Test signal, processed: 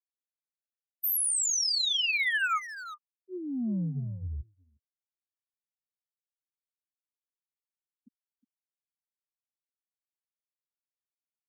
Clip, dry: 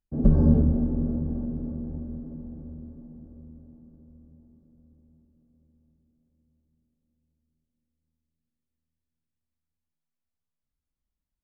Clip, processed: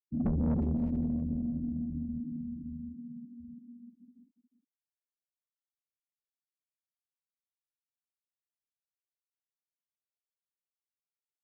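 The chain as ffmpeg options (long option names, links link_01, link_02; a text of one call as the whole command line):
ffmpeg -i in.wav -filter_complex "[0:a]bandreject=frequency=50:width_type=h:width=6,bandreject=frequency=100:width_type=h:width=6,bandreject=frequency=150:width_type=h:width=6,aecho=1:1:4.6:0.42,afftfilt=real='re*(1-between(b*sr/4096,370,1200))':imag='im*(1-between(b*sr/4096,370,1200))':win_size=4096:overlap=0.75,highpass=76,afftfilt=real='re*gte(hypot(re,im),0.0282)':imag='im*gte(hypot(re,im),0.0282)':win_size=1024:overlap=0.75,acrossover=split=230|670[link_01][link_02][link_03];[link_01]asoftclip=type=tanh:threshold=-27dB[link_04];[link_02]acompressor=threshold=-39dB:ratio=16[link_05];[link_04][link_05][link_03]amix=inputs=3:normalize=0,asplit=2[link_06][link_07];[link_07]adelay=360,highpass=300,lowpass=3400,asoftclip=type=hard:threshold=-30.5dB,volume=-9dB[link_08];[link_06][link_08]amix=inputs=2:normalize=0" out.wav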